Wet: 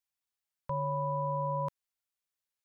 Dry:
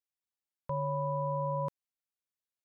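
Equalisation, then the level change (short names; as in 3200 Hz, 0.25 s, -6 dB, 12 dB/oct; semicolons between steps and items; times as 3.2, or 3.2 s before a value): bell 300 Hz -9 dB 1.6 oct; +3.0 dB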